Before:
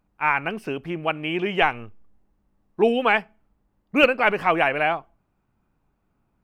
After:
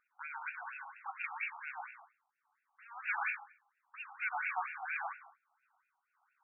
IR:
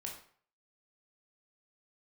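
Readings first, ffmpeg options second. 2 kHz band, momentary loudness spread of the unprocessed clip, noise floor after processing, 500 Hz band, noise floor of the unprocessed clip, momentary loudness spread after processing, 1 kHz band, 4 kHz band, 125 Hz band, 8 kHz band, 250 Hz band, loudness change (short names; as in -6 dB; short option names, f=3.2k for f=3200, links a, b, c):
-14.5 dB, 11 LU, -84 dBFS, -36.0 dB, -71 dBFS, 15 LU, -17.0 dB, under -30 dB, under -40 dB, n/a, under -40 dB, -18.0 dB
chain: -filter_complex "[0:a]equalizer=f=1.1k:t=o:w=2.9:g=-11,acompressor=threshold=-35dB:ratio=6,aeval=exprs='0.0501*(cos(1*acos(clip(val(0)/0.0501,-1,1)))-cos(1*PI/2))+0.00562*(cos(8*acos(clip(val(0)/0.0501,-1,1)))-cos(8*PI/2))':c=same,aresample=11025,asoftclip=type=tanh:threshold=-38.5dB,aresample=44100,tremolo=f=1.6:d=0.8,asplit=2[a][b];[1:a]atrim=start_sample=2205,adelay=111[c];[b][c]afir=irnorm=-1:irlink=0,volume=1.5dB[d];[a][d]amix=inputs=2:normalize=0,afftfilt=real='re*between(b*sr/1024,970*pow(2000/970,0.5+0.5*sin(2*PI*4.3*pts/sr))/1.41,970*pow(2000/970,0.5+0.5*sin(2*PI*4.3*pts/sr))*1.41)':imag='im*between(b*sr/1024,970*pow(2000/970,0.5+0.5*sin(2*PI*4.3*pts/sr))/1.41,970*pow(2000/970,0.5+0.5*sin(2*PI*4.3*pts/sr))*1.41)':win_size=1024:overlap=0.75,volume=15dB"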